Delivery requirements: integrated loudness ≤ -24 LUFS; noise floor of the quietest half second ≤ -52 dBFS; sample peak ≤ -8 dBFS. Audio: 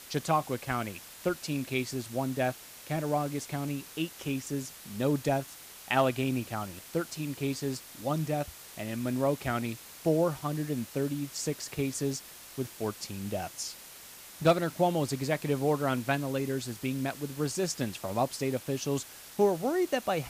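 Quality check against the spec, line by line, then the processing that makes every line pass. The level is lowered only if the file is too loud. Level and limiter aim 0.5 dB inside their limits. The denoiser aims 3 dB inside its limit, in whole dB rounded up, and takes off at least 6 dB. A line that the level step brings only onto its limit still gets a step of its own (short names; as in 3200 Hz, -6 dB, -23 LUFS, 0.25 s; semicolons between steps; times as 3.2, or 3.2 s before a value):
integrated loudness -32.0 LUFS: OK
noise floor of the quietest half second -49 dBFS: fail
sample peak -13.5 dBFS: OK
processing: denoiser 6 dB, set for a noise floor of -49 dBFS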